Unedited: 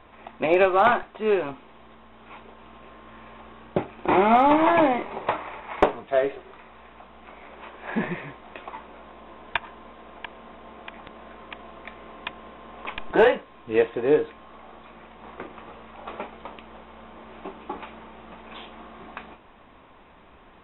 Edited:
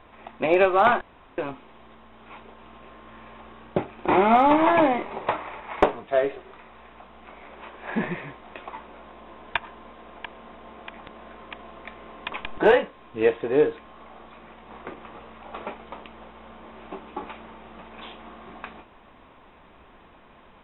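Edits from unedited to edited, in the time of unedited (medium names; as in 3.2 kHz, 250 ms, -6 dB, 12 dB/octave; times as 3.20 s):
1.01–1.38 s: room tone
12.32–12.85 s: delete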